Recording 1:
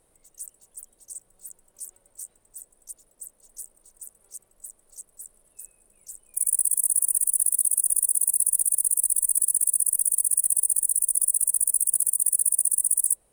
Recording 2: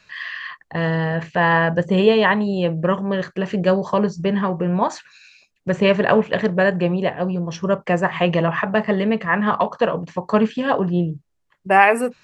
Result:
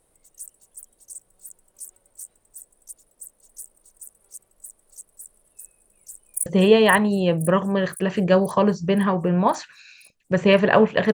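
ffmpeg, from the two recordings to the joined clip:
ffmpeg -i cue0.wav -i cue1.wav -filter_complex "[0:a]apad=whole_dur=11.13,atrim=end=11.13,atrim=end=6.462[link_01];[1:a]atrim=start=1.818:end=6.49[link_02];[link_01][link_02]acrossfade=duration=0.004:curve1=hsin:curve2=hsin,asplit=2[link_03][link_04];[link_04]afade=type=in:start_time=5.91:duration=0.01,afade=type=out:start_time=6.46:duration=0.01,aecho=0:1:520|1040|1560|2080|2600|3120|3640|4160|4680:0.473151|0.307548|0.199906|0.129939|0.0844605|0.0548993|0.0356845|0.023195|0.0150767[link_05];[link_03][link_05]amix=inputs=2:normalize=0" out.wav

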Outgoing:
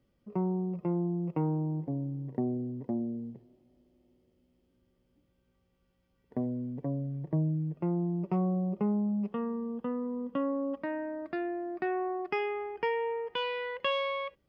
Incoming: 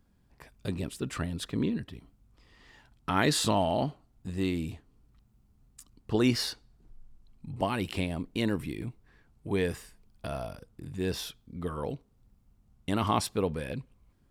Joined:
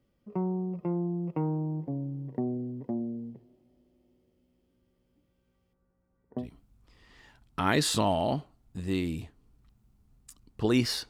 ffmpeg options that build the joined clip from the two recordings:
ffmpeg -i cue0.wav -i cue1.wav -filter_complex "[0:a]asettb=1/sr,asplit=3[link_01][link_02][link_03];[link_01]atrim=end=5.734[link_04];[link_02]atrim=start=5.73:end=6.48,asetpts=PTS-STARTPTS,afade=type=in:duration=0.004:curve=qsin,afade=type=out:start_time=0.746:duration=0.004:curve=qsin,lowpass=frequency=1600:width=0.5412,lowpass=frequency=1600:width=1.3066[link_05];[link_03]atrim=start=6.476[link_06];[link_04][link_05]acrossfade=duration=0.004:curve1=hsin:curve2=qsin[link_07];[link_07][link_06]acrossfade=duration=0.004:curve1=qsin:curve2=hsin,apad=whole_dur=11.09,atrim=end=11.09,atrim=end=6.48,asetpts=PTS-STARTPTS[link_08];[1:a]atrim=start=1.86:end=6.59,asetpts=PTS-STARTPTS[link_09];[link_08][link_09]acrossfade=duration=0.12:curve1=tri:curve2=tri" out.wav

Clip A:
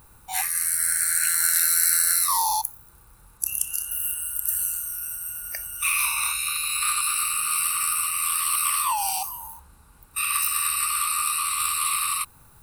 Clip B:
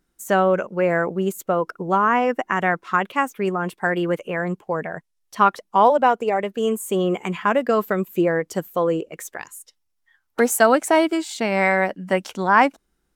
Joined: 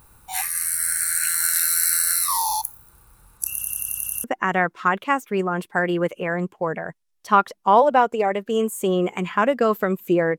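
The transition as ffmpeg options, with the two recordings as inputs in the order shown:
ffmpeg -i cue0.wav -i cue1.wav -filter_complex "[0:a]apad=whole_dur=10.38,atrim=end=10.38,asplit=8[link_01][link_02][link_03][link_04][link_05][link_06][link_07][link_08];[link_01]atrim=end=3.612[link_09];[link_02]atrim=start=3.518:end=3.612[link_10];[link_03]atrim=start=3.518:end=3.612[link_11];[link_04]atrim=start=3.518:end=3.612[link_12];[link_05]atrim=start=3.518:end=3.612[link_13];[link_06]atrim=start=3.518:end=3.612[link_14];[link_07]atrim=start=3.518:end=3.612[link_15];[link_08]atrim=start=3.518:end=3.612[link_16];[1:a]atrim=start=2.318:end=8.46[link_17];[link_09][link_10]acrossfade=duration=0.004:curve1=hsin:curve2=hsin[link_18];[link_18][link_11]acrossfade=duration=0.004:curve1=hsin:curve2=hsin[link_19];[link_19][link_12]acrossfade=duration=0.004:curve1=hsin:curve2=hsin[link_20];[link_20][link_13]acrossfade=duration=0.004:curve1=hsin:curve2=hsin[link_21];[link_21][link_14]acrossfade=duration=0.004:curve1=hsin:curve2=hsin[link_22];[link_22][link_15]acrossfade=duration=0.004:curve1=hsin:curve2=hsin[link_23];[link_23][link_16]acrossfade=duration=0.004:curve1=hsin:curve2=hsin[link_24];[link_24][link_17]acrossfade=duration=0.004:curve1=hsin:curve2=hsin" out.wav

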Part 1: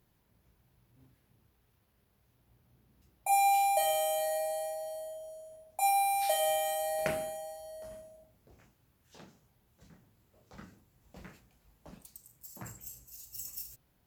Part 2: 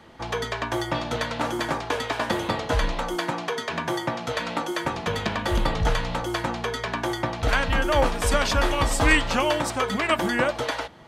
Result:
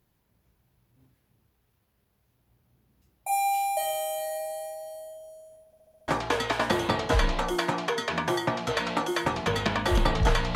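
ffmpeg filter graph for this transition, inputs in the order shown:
ffmpeg -i cue0.wav -i cue1.wav -filter_complex "[0:a]apad=whole_dur=10.55,atrim=end=10.55,asplit=6[link_01][link_02][link_03][link_04][link_05][link_06];[link_01]atrim=end=5.732[link_07];[link_02]atrim=start=5.658:end=5.732[link_08];[link_03]atrim=start=5.658:end=5.732[link_09];[link_04]atrim=start=5.658:end=5.732[link_10];[link_05]atrim=start=5.658:end=5.732[link_11];[link_06]atrim=start=5.658:end=5.732[link_12];[1:a]atrim=start=1.678:end=6.15[link_13];[link_07][link_08]acrossfade=duration=0.004:curve1=hsin:curve2=hsin[link_14];[link_14][link_09]acrossfade=duration=0.004:curve1=hsin:curve2=hsin[link_15];[link_15][link_10]acrossfade=duration=0.004:curve1=hsin:curve2=hsin[link_16];[link_16][link_11]acrossfade=duration=0.004:curve1=hsin:curve2=hsin[link_17];[link_17][link_12]acrossfade=duration=0.004:curve1=hsin:curve2=hsin[link_18];[link_18][link_13]acrossfade=duration=0.004:curve1=hsin:curve2=hsin" out.wav

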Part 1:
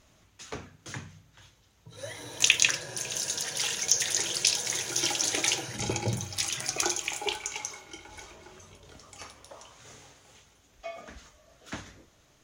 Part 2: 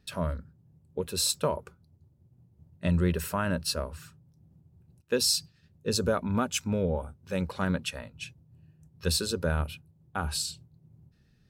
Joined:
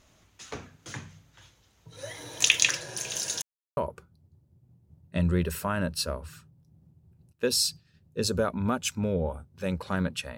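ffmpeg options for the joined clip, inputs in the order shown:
ffmpeg -i cue0.wav -i cue1.wav -filter_complex "[0:a]apad=whole_dur=10.37,atrim=end=10.37,asplit=2[link_01][link_02];[link_01]atrim=end=3.42,asetpts=PTS-STARTPTS,afade=type=out:start_time=3.416:duration=0.004:curve=hsin[link_03];[link_02]atrim=start=3.42:end=3.77,asetpts=PTS-STARTPTS,volume=0[link_04];[1:a]atrim=start=1.46:end=8.06,asetpts=PTS-STARTPTS,afade=type=in:duration=0.004:curve=hsin[link_05];[link_03][link_04][link_05]concat=n=3:v=0:a=1" out.wav

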